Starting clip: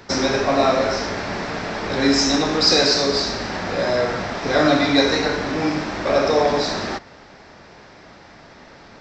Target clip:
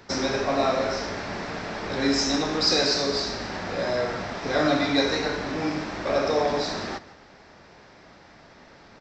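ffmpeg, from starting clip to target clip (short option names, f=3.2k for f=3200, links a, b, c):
-af "aecho=1:1:160:0.119,volume=-6dB"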